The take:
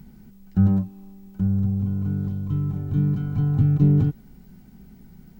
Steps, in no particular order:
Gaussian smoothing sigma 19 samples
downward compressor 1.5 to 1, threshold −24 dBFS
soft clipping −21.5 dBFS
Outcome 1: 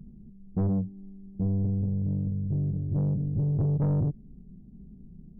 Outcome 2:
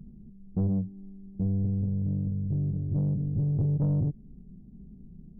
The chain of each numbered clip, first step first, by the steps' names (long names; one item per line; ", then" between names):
Gaussian smoothing, then soft clipping, then downward compressor
downward compressor, then Gaussian smoothing, then soft clipping